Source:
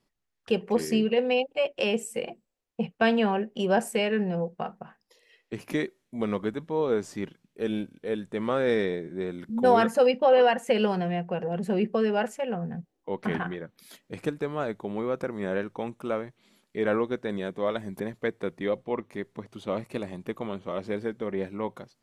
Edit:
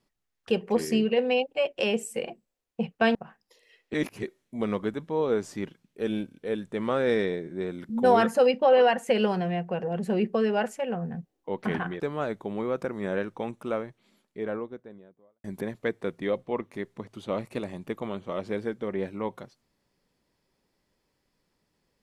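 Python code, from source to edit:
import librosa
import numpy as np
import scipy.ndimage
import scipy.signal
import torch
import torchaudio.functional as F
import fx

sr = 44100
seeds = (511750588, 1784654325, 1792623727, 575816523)

y = fx.studio_fade_out(x, sr, start_s=15.94, length_s=1.89)
y = fx.edit(y, sr, fx.cut(start_s=3.15, length_s=1.6),
    fx.reverse_span(start_s=5.54, length_s=0.29),
    fx.cut(start_s=13.6, length_s=0.79), tone=tone)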